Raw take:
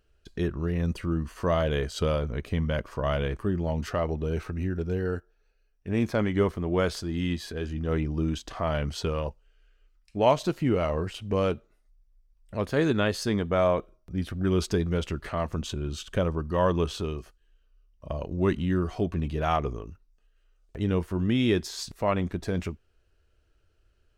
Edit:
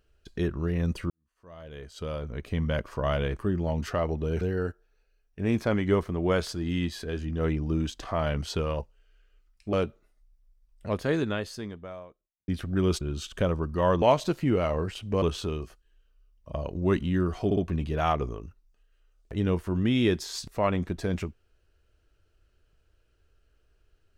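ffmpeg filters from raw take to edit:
-filter_complex "[0:a]asplit=10[s0][s1][s2][s3][s4][s5][s6][s7][s8][s9];[s0]atrim=end=1.1,asetpts=PTS-STARTPTS,afade=t=out:st=1.096:d=0.004:c=hsin[s10];[s1]atrim=start=1.1:end=4.412,asetpts=PTS-STARTPTS,afade=t=in:d=1.58:c=qua[s11];[s2]atrim=start=4.888:end=10.212[s12];[s3]atrim=start=11.408:end=14.16,asetpts=PTS-STARTPTS,afade=t=out:st=1.212:d=1.54:c=qua[s13];[s4]atrim=start=14.16:end=14.692,asetpts=PTS-STARTPTS,afade=t=in:d=0.004:c=hsin[s14];[s5]atrim=start=15.768:end=16.782[s15];[s6]atrim=start=10.208:end=11.412[s16];[s7]atrim=start=16.778:end=19.072[s17];[s8]atrim=start=19.008:end=19.072[s18];[s9]atrim=start=19.008[s19];[s10][s11]concat=n=2:v=0:a=1[s20];[s20][s12]acrossfade=d=0.004:c1=hsin:c2=hsin[s21];[s13][s14]concat=n=2:v=0:a=1[s22];[s21][s22]acrossfade=d=0.004:c1=hsin:c2=hsin[s23];[s23][s15]acrossfade=d=0.004:c1=hsin:c2=hsin[s24];[s24][s16]acrossfade=d=0.004:c1=hsin:c2=hsin[s25];[s25][s17]acrossfade=d=0.004:c1=hsin:c2=hsin[s26];[s26][s18]acrossfade=d=0.004:c1=hsin:c2=hsin[s27];[s27][s19]acrossfade=d=0.004:c1=hsin:c2=hsin"

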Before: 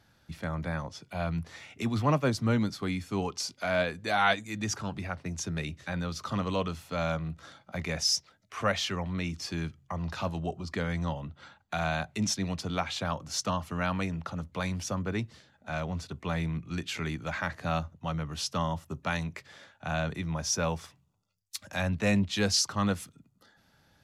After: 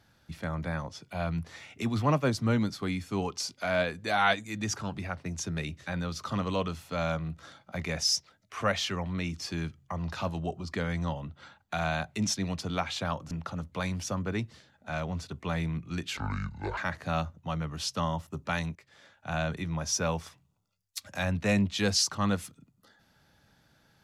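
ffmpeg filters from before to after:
-filter_complex "[0:a]asplit=5[s0][s1][s2][s3][s4];[s0]atrim=end=13.312[s5];[s1]atrim=start=14.108:end=16.974[s6];[s2]atrim=start=16.97:end=17.35,asetpts=PTS-STARTPTS,asetrate=27783,aresample=44100[s7];[s3]atrim=start=17.346:end=19.33,asetpts=PTS-STARTPTS,afade=t=out:st=1.98:d=0.004:c=hsin:silence=0.16788[s8];[s4]atrim=start=19.33,asetpts=PTS-STARTPTS,afade=t=in:d=0.57:silence=0.16788[s9];[s5][s6]acrossfade=d=0.004:c1=hsin:c2=hsin[s10];[s10][s7]acrossfade=d=0.004:c1=hsin:c2=hsin[s11];[s8][s9]concat=n=2:v=0:a=1[s12];[s11][s12]acrossfade=d=0.004:c1=hsin:c2=hsin"

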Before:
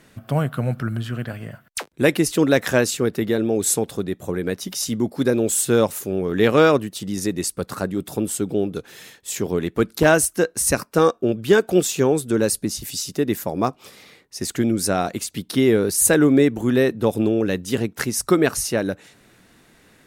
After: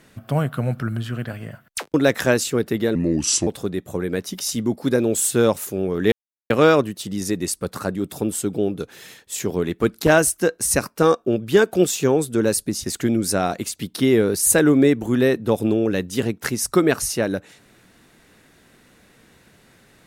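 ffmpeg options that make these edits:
-filter_complex "[0:a]asplit=6[s0][s1][s2][s3][s4][s5];[s0]atrim=end=1.942[s6];[s1]atrim=start=2.408:end=3.424[s7];[s2]atrim=start=3.42:end=3.81,asetpts=PTS-STARTPTS,asetrate=33075,aresample=44100[s8];[s3]atrim=start=3.806:end=6.46,asetpts=PTS-STARTPTS,afade=t=out:st=2.65:d=0.004:c=hsin,apad=pad_dur=0.38[s9];[s4]atrim=start=6.46:end=12.802,asetpts=PTS-STARTPTS,afade=t=in:d=0.004:c=hsin[s10];[s5]atrim=start=14.388[s11];[s6][s7]acrossfade=d=0.004:c1=hsin:c2=hsin[s12];[s12][s8]acrossfade=d=0.004:c1=hsin:c2=hsin[s13];[s9][s10]concat=n=2:v=0:a=1[s14];[s13][s14]acrossfade=d=0.004:c1=hsin:c2=hsin[s15];[s15][s11]acrossfade=d=0.004:c1=hsin:c2=hsin"

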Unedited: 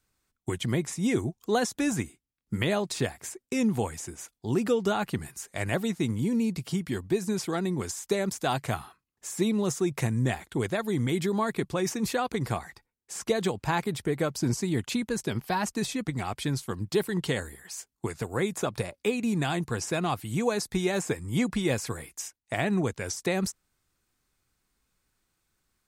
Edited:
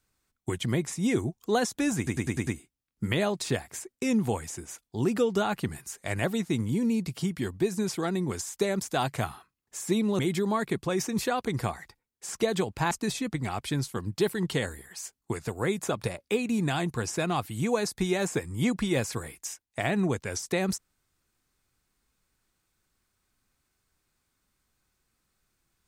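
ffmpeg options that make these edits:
-filter_complex "[0:a]asplit=8[s0][s1][s2][s3][s4][s5][s6][s7];[s0]atrim=end=2.072[s8];[s1]atrim=start=1.968:end=2.072[s9];[s2]atrim=start=1.968:end=2.072[s10];[s3]atrim=start=1.968:end=2.072[s11];[s4]atrim=start=1.968:end=2.072[s12];[s5]atrim=start=1.968:end=9.692[s13];[s6]atrim=start=11.058:end=13.782[s14];[s7]atrim=start=15.648[s15];[s8][s9]acrossfade=d=0.004:c1=hsin:c2=hsin[s16];[s16][s10]acrossfade=d=0.004:c1=hsin:c2=hsin[s17];[s17][s11]acrossfade=d=0.004:c1=hsin:c2=hsin[s18];[s18][s12]acrossfade=d=0.004:c1=hsin:c2=hsin[s19];[s19][s13]acrossfade=d=0.004:c1=hsin:c2=hsin[s20];[s20][s14]acrossfade=d=0.004:c1=hsin:c2=hsin[s21];[s21][s15]acrossfade=d=0.004:c1=hsin:c2=hsin"

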